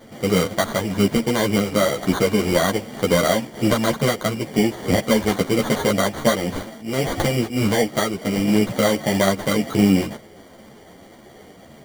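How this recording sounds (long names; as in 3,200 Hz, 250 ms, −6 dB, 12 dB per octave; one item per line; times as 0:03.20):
aliases and images of a low sample rate 2,600 Hz, jitter 0%
a shimmering, thickened sound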